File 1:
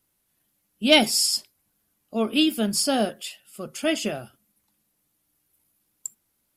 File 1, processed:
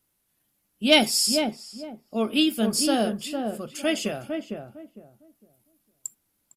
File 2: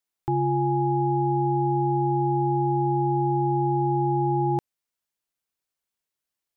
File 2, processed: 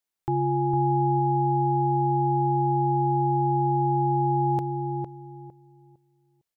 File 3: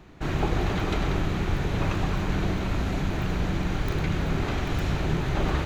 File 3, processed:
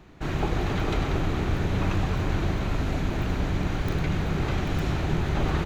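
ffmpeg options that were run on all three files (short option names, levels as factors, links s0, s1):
-filter_complex "[0:a]asplit=2[s0][s1];[s1]adelay=456,lowpass=f=880:p=1,volume=0.631,asplit=2[s2][s3];[s3]adelay=456,lowpass=f=880:p=1,volume=0.26,asplit=2[s4][s5];[s5]adelay=456,lowpass=f=880:p=1,volume=0.26,asplit=2[s6][s7];[s7]adelay=456,lowpass=f=880:p=1,volume=0.26[s8];[s0][s2][s4][s6][s8]amix=inputs=5:normalize=0,volume=0.891"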